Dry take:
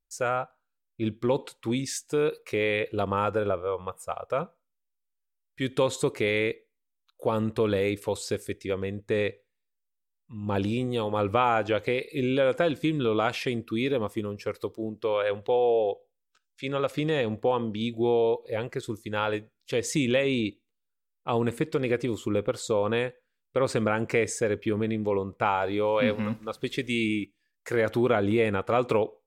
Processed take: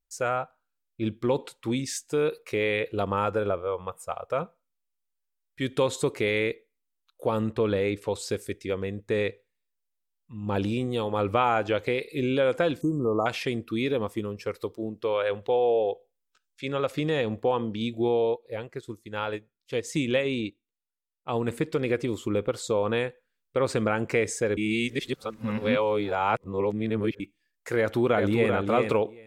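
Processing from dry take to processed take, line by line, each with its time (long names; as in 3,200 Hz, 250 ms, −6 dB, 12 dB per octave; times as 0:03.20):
0:07.51–0:08.18: high-shelf EQ 6,200 Hz → 9,900 Hz −12 dB
0:12.81–0:13.26: linear-phase brick-wall band-stop 1,300–5,700 Hz
0:18.08–0:21.48: expander for the loud parts, over −40 dBFS
0:24.57–0:27.20: reverse
0:27.78–0:28.51: delay throw 390 ms, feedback 10%, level −5 dB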